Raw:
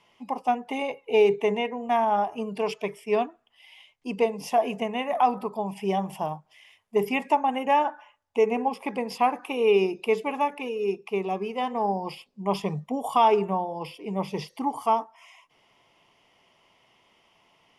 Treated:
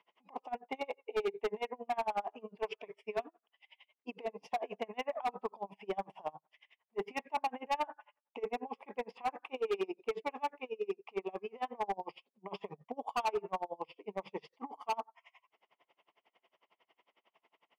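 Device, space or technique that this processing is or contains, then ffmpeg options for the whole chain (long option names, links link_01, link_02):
helicopter radio: -af "highpass=360,lowpass=2600,aeval=exprs='val(0)*pow(10,-31*(0.5-0.5*cos(2*PI*11*n/s))/20)':channel_layout=same,asoftclip=type=hard:threshold=-26dB,volume=-2dB"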